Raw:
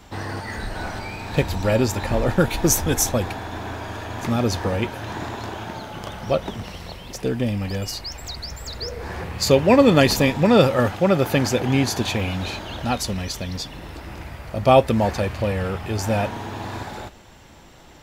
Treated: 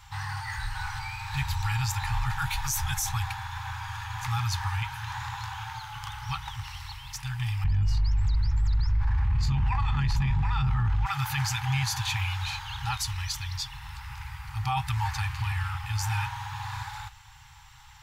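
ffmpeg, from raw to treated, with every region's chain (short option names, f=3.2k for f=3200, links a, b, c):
-filter_complex "[0:a]asettb=1/sr,asplit=3[a][b][c];[a]atrim=end=7.644[d];[b]atrim=start=7.64:end=11.06,asetpts=PTS-STARTPTS,afade=t=in:d=0.004:c=qsin,afade=t=out:st=3.416:d=0.004:c=qsin,aeval=exprs='val(0)+0.0251*(sin(2*PI*50*n/s)+sin(2*PI*2*50*n/s)/2+sin(2*PI*3*50*n/s)/3+sin(2*PI*4*50*n/s)/4+sin(2*PI*5*50*n/s)/5)':c=same,aemphasis=mode=reproduction:type=riaa[e];[c]atrim=start=11.056[f];[d][e]acrossfade=d=0.004:c1=hsin:c2=qsin[g];[g][f]acrossfade=d=0.004:c1=qsin:c2=hsin,afftfilt=real='re*(1-between(b*sr/4096,150,770))':imag='im*(1-between(b*sr/4096,150,770))':win_size=4096:overlap=0.75,alimiter=limit=-17dB:level=0:latency=1:release=10,volume=-2.5dB"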